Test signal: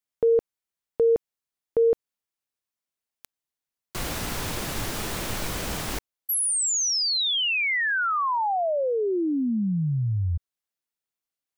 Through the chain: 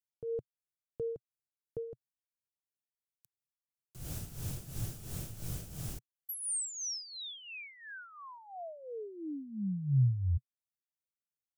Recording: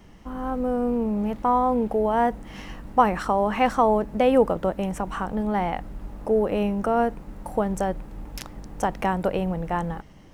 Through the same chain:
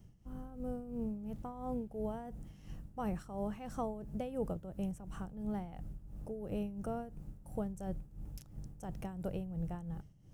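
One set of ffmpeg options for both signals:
-af "equalizer=f=125:t=o:w=1:g=10,equalizer=f=250:t=o:w=1:g=-6,equalizer=f=500:t=o:w=1:g=-5,equalizer=f=1000:t=o:w=1:g=-12,equalizer=f=2000:t=o:w=1:g=-11,equalizer=f=4000:t=o:w=1:g=-7,tremolo=f=2.9:d=0.71,volume=0.422"

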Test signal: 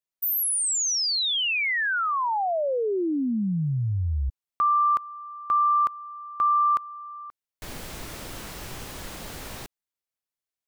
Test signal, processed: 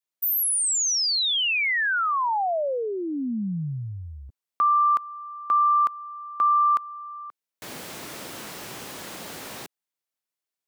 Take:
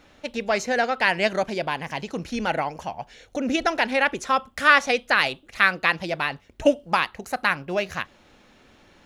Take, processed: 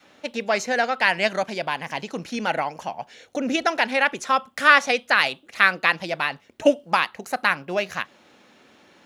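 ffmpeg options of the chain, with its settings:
-af "highpass=180,adynamicequalizer=threshold=0.0112:dfrequency=370:dqfactor=1.3:tfrequency=370:tqfactor=1.3:attack=5:release=100:ratio=0.375:range=3:mode=cutabove:tftype=bell,volume=1.19"

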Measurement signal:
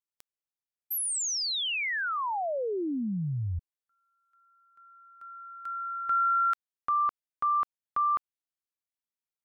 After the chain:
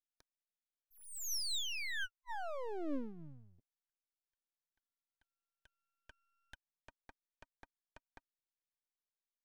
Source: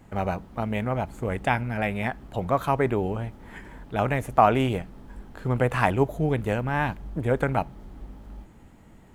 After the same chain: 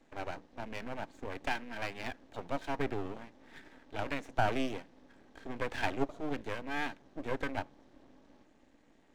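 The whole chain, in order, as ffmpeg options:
-af "asuperstop=centerf=1200:order=20:qfactor=2.1,highpass=f=180:w=0.5412,highpass=f=180:w=1.3066,equalizer=f=190:t=q:w=4:g=-8,equalizer=f=280:t=q:w=4:g=7,equalizer=f=1500:t=q:w=4:g=6,equalizer=f=3800:t=q:w=4:g=5,equalizer=f=5700:t=q:w=4:g=5,lowpass=f=7300:w=0.5412,lowpass=f=7300:w=1.3066,aeval=exprs='max(val(0),0)':c=same,volume=0.447"

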